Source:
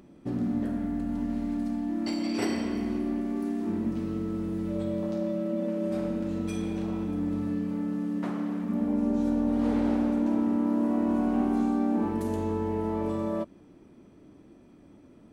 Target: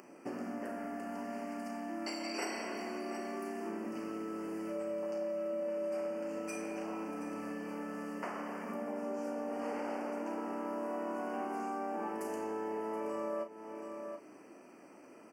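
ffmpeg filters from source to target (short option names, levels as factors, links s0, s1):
-filter_complex "[0:a]highpass=530,asplit=2[s0][s1];[s1]adelay=36,volume=0.335[s2];[s0][s2]amix=inputs=2:normalize=0,asplit=2[s3][s4];[s4]aecho=0:1:725:0.168[s5];[s3][s5]amix=inputs=2:normalize=0,acompressor=threshold=0.00447:ratio=2.5,asuperstop=centerf=3700:order=12:qfactor=2.5,volume=2.24"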